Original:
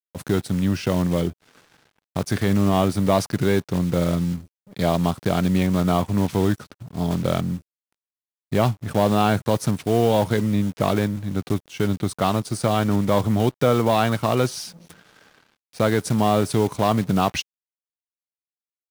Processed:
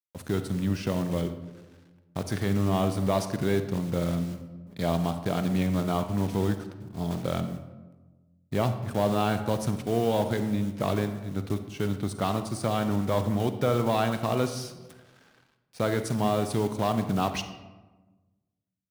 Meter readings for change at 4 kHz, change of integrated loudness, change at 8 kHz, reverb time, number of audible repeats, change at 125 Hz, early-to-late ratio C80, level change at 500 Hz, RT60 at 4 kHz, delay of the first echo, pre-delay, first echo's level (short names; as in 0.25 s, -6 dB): -6.5 dB, -6.5 dB, -6.5 dB, 1.2 s, none, -6.0 dB, 12.0 dB, -6.0 dB, 0.65 s, none, 36 ms, none